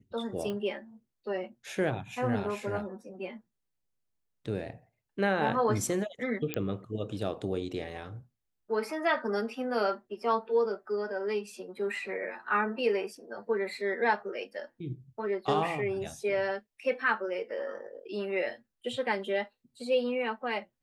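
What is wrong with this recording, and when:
0.50 s: pop -24 dBFS
6.54 s: pop -15 dBFS

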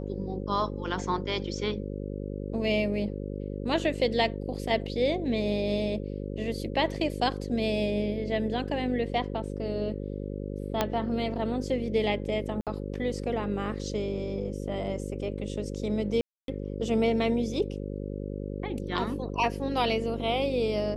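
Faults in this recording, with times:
buzz 50 Hz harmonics 11 -35 dBFS
10.81 s: pop -10 dBFS
12.61–12.67 s: dropout 57 ms
16.21–16.48 s: dropout 272 ms

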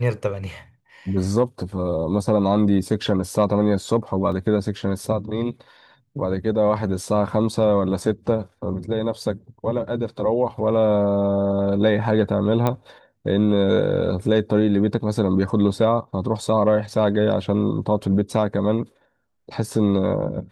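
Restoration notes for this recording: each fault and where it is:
4.32 s: dropout 3.1 ms
12.67 s: pop -9 dBFS

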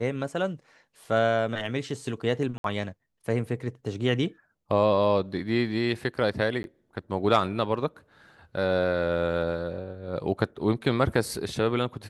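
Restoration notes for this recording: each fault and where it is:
2.58–2.64 s: dropout 62 ms
6.63–6.64 s: dropout 11 ms

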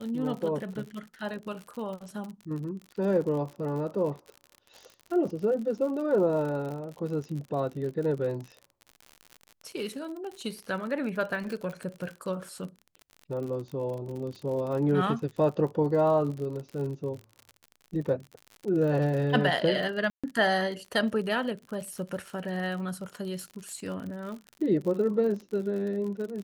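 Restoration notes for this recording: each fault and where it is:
crackle 56 per s -36 dBFS
20.10–20.24 s: dropout 136 ms

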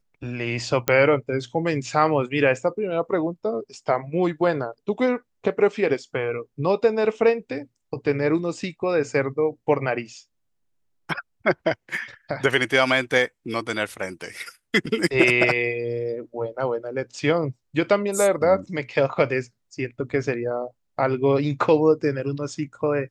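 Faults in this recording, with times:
0.88 s: pop -6 dBFS

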